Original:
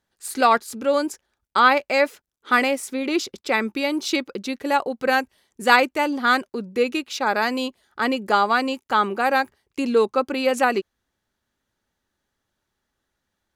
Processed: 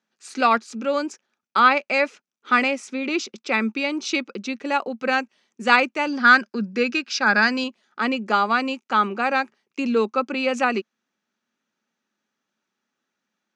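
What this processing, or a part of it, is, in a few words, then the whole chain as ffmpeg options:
television speaker: -filter_complex "[0:a]highpass=f=170:w=0.5412,highpass=f=170:w=1.3066,equalizer=f=220:t=q:w=4:g=8,equalizer=f=1.3k:t=q:w=4:g=5,equalizer=f=2.5k:t=q:w=4:g=8,equalizer=f=6k:t=q:w=4:g=5,lowpass=f=7.1k:w=0.5412,lowpass=f=7.1k:w=1.3066,asettb=1/sr,asplit=3[a][b][c];[a]atrim=end=6.074[d];[b]atrim=start=6.07:end=7.64,asetpts=PTS-STARTPTS,afade=t=in:d=0.004:c=qsin,afade=t=out:st=1.566:d=0.004:c=qsin,equalizer=f=200:t=o:w=0.33:g=7,equalizer=f=1.6k:t=o:w=0.33:g=12,equalizer=f=5k:t=o:w=0.33:g=12[e];[c]atrim=start=7.636[f];[d][e]acrossfade=d=0.004:c1=hsin:c2=qsin[g];[g][f]acrossfade=d=0.004:c1=qsin:c2=hsin,volume=-3.5dB"

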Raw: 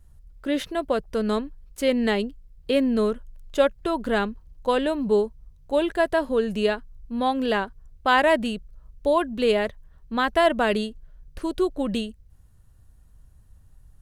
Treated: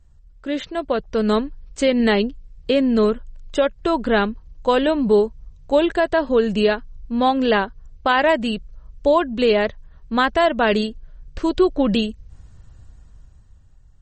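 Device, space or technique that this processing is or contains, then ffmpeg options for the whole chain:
low-bitrate web radio: -af "dynaudnorm=f=220:g=11:m=16.5dB,alimiter=limit=-6.5dB:level=0:latency=1:release=248" -ar 48000 -c:a libmp3lame -b:a 32k

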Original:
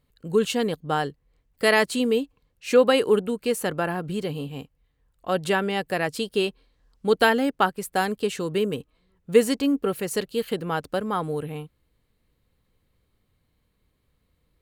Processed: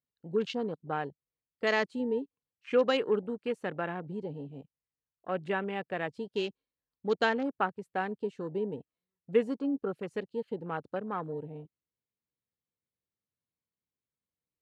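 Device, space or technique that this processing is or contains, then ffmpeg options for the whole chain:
over-cleaned archive recording: -filter_complex "[0:a]asettb=1/sr,asplit=3[a][b][c];[a]atrim=end=2.714[d];[b]atrim=start=2.71:end=3.98,asetpts=PTS-STARTPTS,afade=t=in:d=0.004:c=qsin,afade=t=out:st=1.266:d=0.004:c=qsin,equalizer=f=5.9k:w=0.32:g=2.5[e];[c]atrim=start=3.976[f];[d][e]acrossfade=d=0.004:c1=hsin:c2=qsin[g];[g][f]acrossfade=d=0.004:c1=qsin:c2=hsin,highpass=120,lowpass=5.5k,afwtdn=0.0224,volume=-8.5dB"

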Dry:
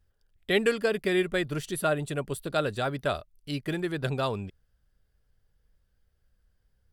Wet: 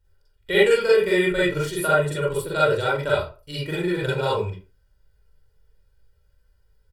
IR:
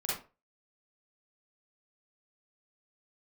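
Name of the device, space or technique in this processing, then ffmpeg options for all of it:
microphone above a desk: -filter_complex "[0:a]aecho=1:1:2.1:0.81[a];[1:a]atrim=start_sample=2205[b];[a][b]afir=irnorm=-1:irlink=0"

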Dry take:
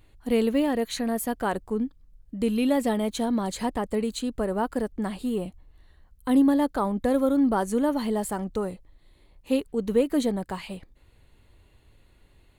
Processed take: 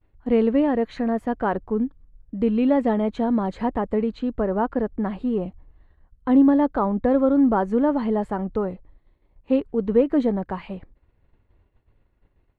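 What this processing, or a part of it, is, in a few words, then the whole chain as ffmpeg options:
hearing-loss simulation: -filter_complex "[0:a]asettb=1/sr,asplit=3[a][b][c];[a]atrim=end=3.944[d];[b]atrim=start=3.94:end=5.09,asetpts=PTS-STARTPTS,afade=t=in:d=0.004:c=qsin,afade=t=out:st=1.146:d=0.004:c=qsin,lowpass=6k[e];[c]atrim=start=5.086[f];[d][e]acrossfade=d=0.004:c1=hsin:c2=qsin[g];[g][f]acrossfade=d=0.004:c1=qsin:c2=hsin,lowpass=1.7k,agate=range=-33dB:threshold=-48dB:ratio=3:detection=peak,volume=4dB"

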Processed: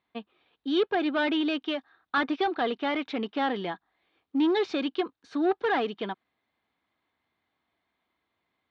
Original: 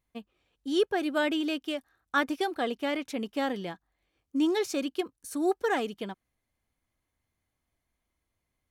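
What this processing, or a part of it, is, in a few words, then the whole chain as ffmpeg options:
overdrive pedal into a guitar cabinet: -filter_complex "[0:a]asplit=2[a][b];[b]highpass=f=720:p=1,volume=18dB,asoftclip=type=tanh:threshold=-14.5dB[c];[a][c]amix=inputs=2:normalize=0,lowpass=f=1.2k:p=1,volume=-6dB,highpass=97,equalizer=f=120:t=q:w=4:g=-5,equalizer=f=550:t=q:w=4:g=-6,equalizer=f=3.7k:t=q:w=4:g=7,lowpass=f=4.5k:w=0.5412,lowpass=f=4.5k:w=1.3066"

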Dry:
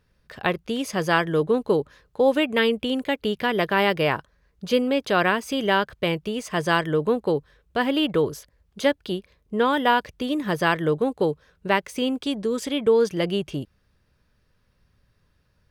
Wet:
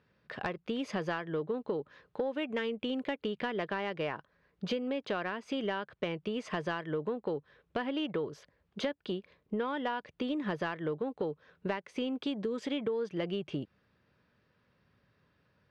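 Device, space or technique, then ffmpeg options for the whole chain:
AM radio: -af "highpass=140,lowpass=3.3k,acompressor=threshold=-30dB:ratio=10,asoftclip=type=tanh:threshold=-20dB"

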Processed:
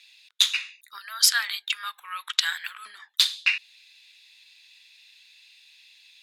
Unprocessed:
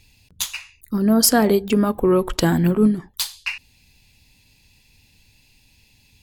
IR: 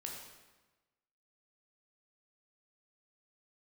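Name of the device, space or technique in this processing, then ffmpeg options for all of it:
headphones lying on a table: -filter_complex "[0:a]aemphasis=mode=reproduction:type=50fm,asettb=1/sr,asplit=3[a][b][c];[a]atrim=end=0.984[d];[b]atrim=start=0.98:end=2.86,asetpts=PTS-STARTPTS,afade=t=in:d=0.004:c=qsin,afade=t=out:st=1.876:d=0.004:c=qsin,highpass=1.5k[e];[c]atrim=start=2.856[f];[d][e]acrossfade=d=0.004:c1=hsin:c2=qsin[g];[g][f]acrossfade=d=0.004:c1=qsin:c2=hsin,highpass=f=1.4k:w=0.5412,highpass=f=1.4k:w=1.3066,equalizer=f=3.7k:t=o:w=0.24:g=11.5,volume=5.5dB"

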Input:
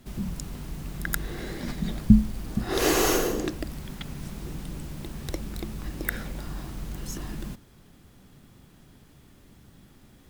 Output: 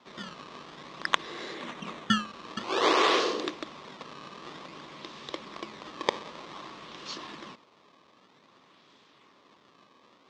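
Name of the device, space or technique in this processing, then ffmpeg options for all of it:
circuit-bent sampling toy: -filter_complex "[0:a]acrusher=samples=18:mix=1:aa=0.000001:lfo=1:lforange=28.8:lforate=0.53,highpass=450,equalizer=f=750:t=q:w=4:g=-5,equalizer=f=1.1k:t=q:w=4:g=8,equalizer=f=1.5k:t=q:w=4:g=-5,equalizer=f=3.6k:t=q:w=4:g=5,lowpass=f=5.7k:w=0.5412,lowpass=f=5.7k:w=1.3066,asettb=1/sr,asplit=3[a][b][c];[a]atrim=end=1.544[d];[b]atrim=start=1.54:end=2.27,asetpts=PTS-STARTPTS,afade=t=in:d=0.004:c=qsin,afade=t=out:st=0.726:d=0.004:c=qsin,equalizer=f=4.9k:t=o:w=0.44:g=-9[e];[c]atrim=start=2.266[f];[d][e]acrossfade=d=0.004:c1=hsin:c2=qsin[g];[g][f]acrossfade=d=0.004:c1=qsin:c2=hsin,volume=1.5dB"

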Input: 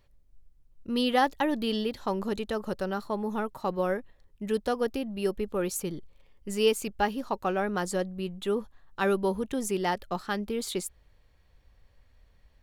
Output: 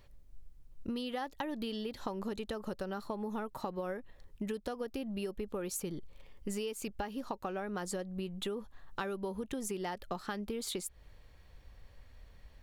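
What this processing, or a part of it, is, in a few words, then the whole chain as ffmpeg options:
serial compression, leveller first: -af "acompressor=threshold=-29dB:ratio=3,acompressor=threshold=-41dB:ratio=5,volume=5dB"

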